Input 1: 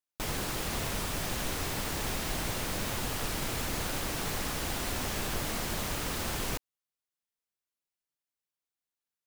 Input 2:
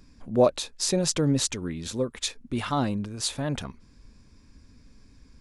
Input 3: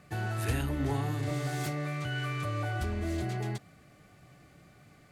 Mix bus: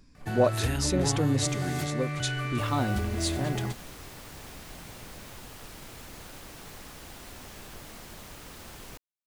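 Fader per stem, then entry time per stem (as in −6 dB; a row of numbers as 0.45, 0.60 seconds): −11.5, −3.5, +2.0 decibels; 2.40, 0.00, 0.15 seconds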